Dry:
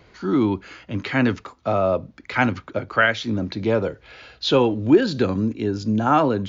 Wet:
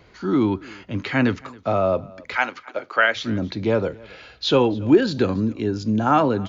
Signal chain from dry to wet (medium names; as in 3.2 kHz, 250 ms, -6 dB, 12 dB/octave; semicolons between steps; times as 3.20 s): 2.35–3.15 s: high-pass 730 Hz -> 330 Hz 12 dB/octave; on a send: delay 276 ms -23.5 dB